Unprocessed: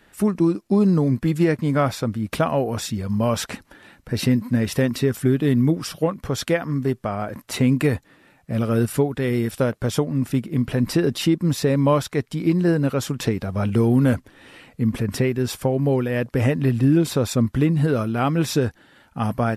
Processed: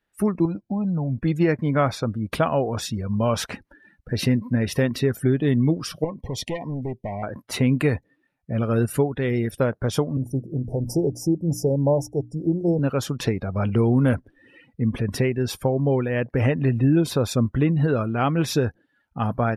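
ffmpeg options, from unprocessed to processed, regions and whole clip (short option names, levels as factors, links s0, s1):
-filter_complex "[0:a]asettb=1/sr,asplit=3[s0][s1][s2];[s0]atrim=end=0.454[s3];[s1]atrim=start=0.45:end=1.19,asetpts=PTS-STARTPTS,afade=t=in:d=0.004:c=qsin,afade=t=out:st=0.736:d=0.004:c=qsin,aemphasis=mode=reproduction:type=50fm,aecho=1:1:1.3:0.78,atrim=end_sample=32634,acompressor=threshold=0.0794:ratio=3:attack=3.2:release=140:knee=1:detection=peak[s4];[s2]atrim=start=1.186[s5];[s3][s4]acrossfade=d=0.004:c1=hsin:c2=qsin[s6];[s6][s5]acrossfade=d=0.004:c1=qsin:c2=hsin,asettb=1/sr,asplit=3[s7][s8][s9];[s7]atrim=end=6.044[s10];[s8]atrim=start=6.04:end=7.23,asetpts=PTS-STARTPTS,afade=t=in:d=0.004:c=qsin,afade=t=out:st=1.186:d=0.004:c=qsin,aeval=exprs='clip(val(0),-1,0.0841)':c=same,acompressor=threshold=0.0562:ratio=2:attack=3.2:release=140:knee=1:detection=peak,asuperstop=centerf=1400:order=20:qfactor=1.9[s11];[s9]atrim=start=7.226[s12];[s10][s11]acrossfade=d=0.004:c1=hsin:c2=qsin[s13];[s13][s12]acrossfade=d=0.004:c1=qsin:c2=hsin,asettb=1/sr,asplit=3[s14][s15][s16];[s14]atrim=end=10.174[s17];[s15]atrim=start=10.17:end=12.79,asetpts=PTS-STARTPTS,afade=t=in:d=0.004:c=qsin,afade=t=out:st=2.616:d=0.004:c=qsin,asuperstop=centerf=2200:order=20:qfactor=0.51,equalizer=f=230:w=4.3:g=-9.5,bandreject=f=60:t=h:w=6,bandreject=f=120:t=h:w=6,bandreject=f=180:t=h:w=6,bandreject=f=240:t=h:w=6,bandreject=f=300:t=h:w=6[s18];[s16]atrim=start=12.786[s19];[s17][s18]acrossfade=d=0.004:c1=hsin:c2=qsin[s20];[s20][s19]acrossfade=d=0.004:c1=qsin:c2=hsin,afftdn=nr=23:nf=-40,equalizer=f=240:w=1.2:g=-2.5,bandreject=f=7600:w=7.5"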